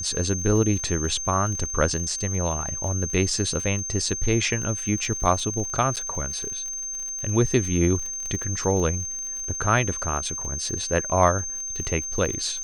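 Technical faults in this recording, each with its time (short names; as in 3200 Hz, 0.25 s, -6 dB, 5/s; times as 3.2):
crackle 35/s -31 dBFS
tone 6300 Hz -29 dBFS
5.96–5.97 gap 7.8 ms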